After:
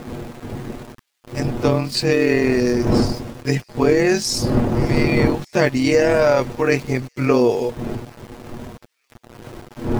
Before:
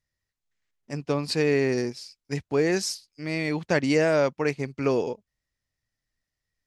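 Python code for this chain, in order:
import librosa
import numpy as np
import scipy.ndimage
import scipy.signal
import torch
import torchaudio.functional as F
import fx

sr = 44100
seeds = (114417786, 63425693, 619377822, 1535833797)

p1 = fx.spec_quant(x, sr, step_db=15)
p2 = fx.dmg_wind(p1, sr, seeds[0], corner_hz=310.0, level_db=-33.0)
p3 = fx.rider(p2, sr, range_db=10, speed_s=0.5)
p4 = p2 + (p3 * 10.0 ** (3.0 / 20.0))
p5 = np.where(np.abs(p4) >= 10.0 ** (-34.0 / 20.0), p4, 0.0)
p6 = p5 + fx.echo_wet_highpass(p5, sr, ms=386, feedback_pct=47, hz=3200.0, wet_db=-23.5, dry=0)
p7 = fx.stretch_grains(p6, sr, factor=1.5, grain_ms=50.0)
y = p7 * 10.0 ** (1.0 / 20.0)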